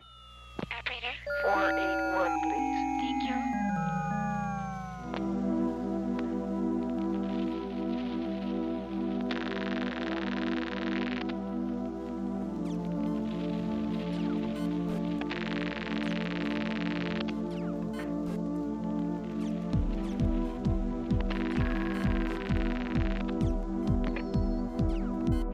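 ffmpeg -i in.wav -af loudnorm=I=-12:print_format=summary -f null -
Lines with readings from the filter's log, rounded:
Input Integrated:    -32.1 LUFS
Input True Peak:     -16.5 dBTP
Input LRA:             2.1 LU
Input Threshold:     -42.2 LUFS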